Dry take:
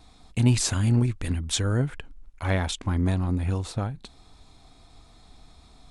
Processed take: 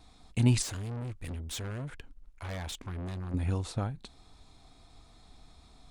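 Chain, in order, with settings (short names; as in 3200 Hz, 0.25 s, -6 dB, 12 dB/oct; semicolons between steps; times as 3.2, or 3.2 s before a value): 0.62–3.34 tube stage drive 31 dB, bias 0.25; gain -4 dB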